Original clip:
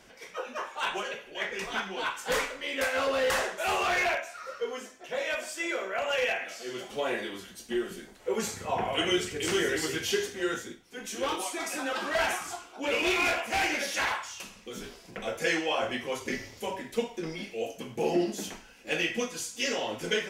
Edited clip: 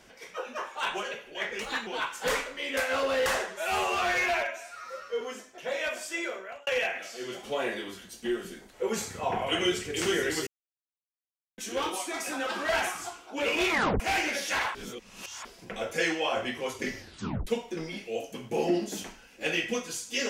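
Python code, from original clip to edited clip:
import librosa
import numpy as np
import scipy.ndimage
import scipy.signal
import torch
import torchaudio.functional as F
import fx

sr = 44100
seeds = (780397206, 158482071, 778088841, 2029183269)

y = fx.edit(x, sr, fx.speed_span(start_s=1.61, length_s=0.3, speed=1.16),
    fx.stretch_span(start_s=3.51, length_s=1.16, factor=1.5),
    fx.fade_out_span(start_s=5.62, length_s=0.51),
    fx.silence(start_s=9.93, length_s=1.11),
    fx.tape_stop(start_s=13.17, length_s=0.29),
    fx.reverse_span(start_s=14.21, length_s=0.7),
    fx.tape_stop(start_s=16.45, length_s=0.48), tone=tone)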